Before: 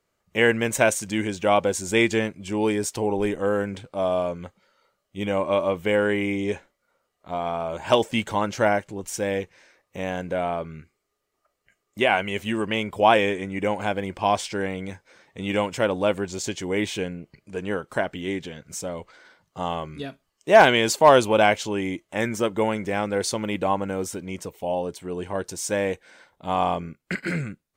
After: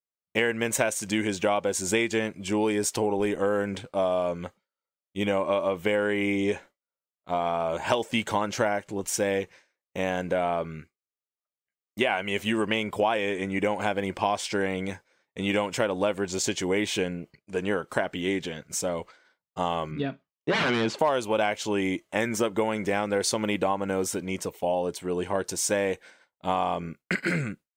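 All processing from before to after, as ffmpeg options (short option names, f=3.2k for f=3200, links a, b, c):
-filter_complex "[0:a]asettb=1/sr,asplit=3[a][b][c];[a]atrim=end=19.914[d];[b]atrim=start=19.91:end=20.99,asetpts=PTS-STARTPTS,afade=t=in:d=0.004:c=qsin,afade=t=out:st=1.076:d=0.004:c=qsin,aeval=exprs='0.126*(abs(mod(val(0)/0.126+3,4)-2)-1)':c=same,highpass=130,lowpass=5.4k,bass=f=250:g=9,treble=f=4k:g=-11[e];[c]atrim=start=20.986[f];[d][e]acrossfade=d=0.004:c1=hsin:c2=qsin[g];[g][f]acrossfade=d=0.004:c1=qsin:c2=hsin,agate=range=-33dB:threshold=-41dB:ratio=3:detection=peak,lowshelf=f=120:g=-8.5,acompressor=threshold=-25dB:ratio=6,volume=3.5dB"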